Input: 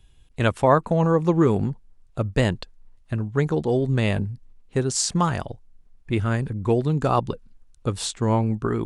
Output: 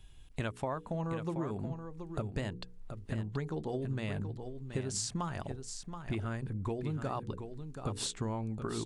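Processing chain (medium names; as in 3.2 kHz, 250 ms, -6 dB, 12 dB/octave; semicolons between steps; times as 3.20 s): peaking EQ 490 Hz -3.5 dB 0.21 oct; hum notches 60/120/180/240/300/360/420/480 Hz; compression 10:1, threshold -33 dBFS, peak gain reduction 20.5 dB; delay 727 ms -8.5 dB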